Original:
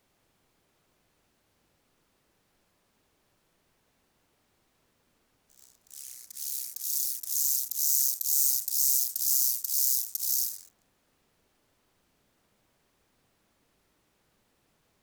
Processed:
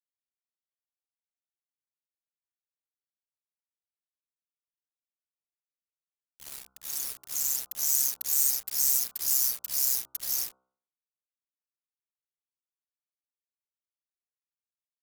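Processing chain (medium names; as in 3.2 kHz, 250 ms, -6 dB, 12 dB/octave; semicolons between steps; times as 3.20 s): expander on every frequency bin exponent 2; bit crusher 7-bit; de-hum 64.55 Hz, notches 23; trim +4 dB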